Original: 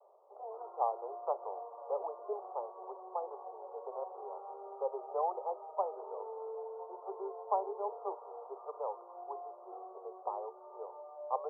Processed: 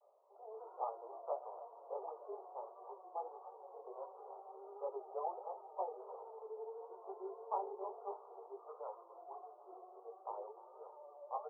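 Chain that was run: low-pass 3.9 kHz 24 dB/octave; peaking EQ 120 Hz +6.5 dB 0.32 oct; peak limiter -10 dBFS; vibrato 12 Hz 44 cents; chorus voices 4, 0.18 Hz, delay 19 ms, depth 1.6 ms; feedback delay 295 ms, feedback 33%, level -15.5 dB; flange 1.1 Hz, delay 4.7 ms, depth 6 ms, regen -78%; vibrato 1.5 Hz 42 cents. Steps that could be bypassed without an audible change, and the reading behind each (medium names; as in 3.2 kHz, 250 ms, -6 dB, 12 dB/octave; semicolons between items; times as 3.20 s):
low-pass 3.9 kHz: input has nothing above 1.4 kHz; peaking EQ 120 Hz: input has nothing below 340 Hz; peak limiter -10 dBFS: peak at its input -19.0 dBFS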